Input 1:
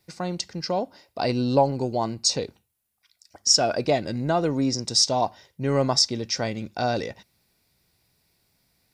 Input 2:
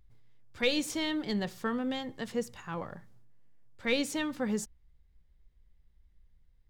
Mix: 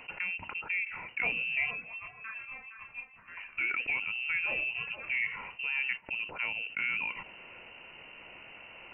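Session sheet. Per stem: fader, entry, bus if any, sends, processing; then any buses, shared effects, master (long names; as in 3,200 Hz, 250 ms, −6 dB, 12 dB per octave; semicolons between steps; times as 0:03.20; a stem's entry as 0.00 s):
−14.0 dB, 0.00 s, muted 0:01.71–0:03.37, no send, no echo send, spectral tilt −1.5 dB per octave; envelope flattener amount 70%
−5.0 dB, 0.60 s, no send, echo send −9 dB, micro pitch shift up and down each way 20 cents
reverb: not used
echo: repeating echo 464 ms, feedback 18%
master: high-pass filter 290 Hz 6 dB per octave; voice inversion scrambler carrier 2,900 Hz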